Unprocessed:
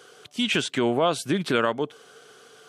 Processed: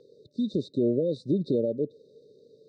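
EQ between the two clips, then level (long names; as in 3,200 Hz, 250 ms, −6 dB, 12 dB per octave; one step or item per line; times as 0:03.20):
linear-phase brick-wall band-stop 610–3,600 Hz
Butterworth low-pass 9,200 Hz 96 dB per octave
high-frequency loss of the air 390 metres
0.0 dB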